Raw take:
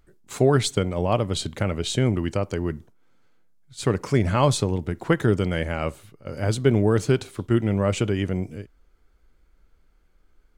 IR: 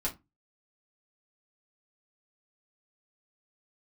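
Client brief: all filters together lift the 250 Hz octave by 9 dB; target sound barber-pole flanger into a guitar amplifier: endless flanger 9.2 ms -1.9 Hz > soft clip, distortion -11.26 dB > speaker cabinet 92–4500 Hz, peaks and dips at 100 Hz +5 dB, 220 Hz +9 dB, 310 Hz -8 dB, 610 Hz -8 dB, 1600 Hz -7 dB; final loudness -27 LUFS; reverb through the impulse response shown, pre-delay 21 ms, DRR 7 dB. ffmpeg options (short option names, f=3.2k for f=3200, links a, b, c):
-filter_complex "[0:a]equalizer=f=250:t=o:g=8,asplit=2[a][b];[1:a]atrim=start_sample=2205,adelay=21[c];[b][c]afir=irnorm=-1:irlink=0,volume=-11dB[d];[a][d]amix=inputs=2:normalize=0,asplit=2[e][f];[f]adelay=9.2,afreqshift=-1.9[g];[e][g]amix=inputs=2:normalize=1,asoftclip=threshold=-17dB,highpass=92,equalizer=f=100:t=q:w=4:g=5,equalizer=f=220:t=q:w=4:g=9,equalizer=f=310:t=q:w=4:g=-8,equalizer=f=610:t=q:w=4:g=-8,equalizer=f=1.6k:t=q:w=4:g=-7,lowpass=f=4.5k:w=0.5412,lowpass=f=4.5k:w=1.3066,volume=-3.5dB"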